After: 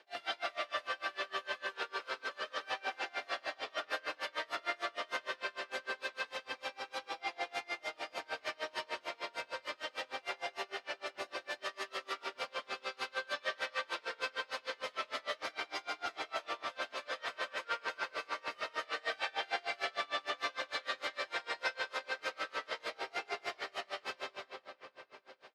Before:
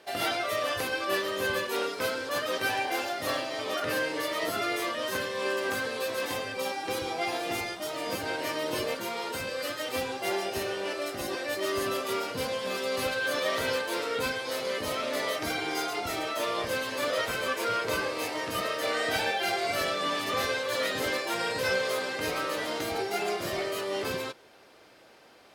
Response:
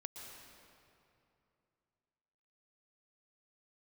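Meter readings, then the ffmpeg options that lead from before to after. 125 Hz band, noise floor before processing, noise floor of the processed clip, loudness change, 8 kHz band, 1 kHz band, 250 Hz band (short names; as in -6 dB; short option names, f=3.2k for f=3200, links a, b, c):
under -25 dB, -51 dBFS, -65 dBFS, -9.5 dB, -16.0 dB, -8.0 dB, -19.5 dB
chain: -filter_complex "[0:a]acrossover=split=610|3400[a][b][c];[a]asoftclip=type=hard:threshold=-40dB[d];[d][b][c]amix=inputs=3:normalize=0,lowshelf=f=460:g=-8,areverse,acompressor=mode=upward:threshold=-47dB:ratio=2.5,areverse,lowpass=4.6k,lowshelf=f=190:g=-12,asplit=2[e][f];[f]adelay=816.3,volume=-12dB,highshelf=f=4k:g=-18.4[g];[e][g]amix=inputs=2:normalize=0[h];[1:a]atrim=start_sample=2205[i];[h][i]afir=irnorm=-1:irlink=0,aeval=exprs='val(0)*pow(10,-29*(0.5-0.5*cos(2*PI*6.6*n/s))/20)':c=same,volume=3.5dB"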